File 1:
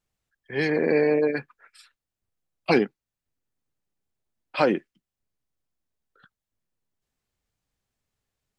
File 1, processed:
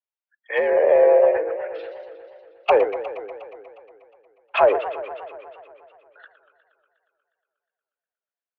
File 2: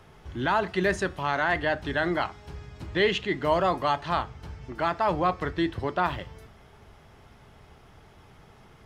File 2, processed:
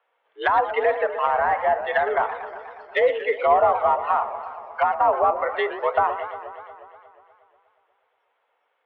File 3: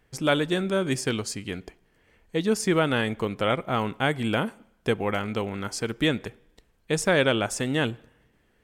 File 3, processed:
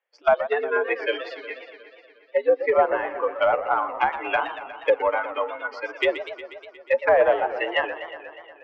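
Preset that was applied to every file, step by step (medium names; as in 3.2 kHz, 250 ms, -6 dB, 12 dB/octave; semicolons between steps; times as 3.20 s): spectral noise reduction 25 dB; mistuned SSB +76 Hz 430–3200 Hz; in parallel at -4.5 dB: overload inside the chain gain 24.5 dB; on the sum: low-pass that closes with the level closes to 880 Hz, closed at -22 dBFS; modulated delay 120 ms, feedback 73%, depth 215 cents, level -12 dB; trim +6.5 dB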